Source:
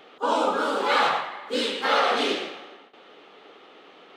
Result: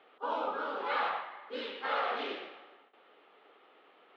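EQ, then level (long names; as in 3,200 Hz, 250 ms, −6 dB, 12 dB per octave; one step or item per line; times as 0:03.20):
high-pass filter 650 Hz 6 dB per octave
high-frequency loss of the air 310 metres
high-shelf EQ 8,000 Hz −9 dB
−7.0 dB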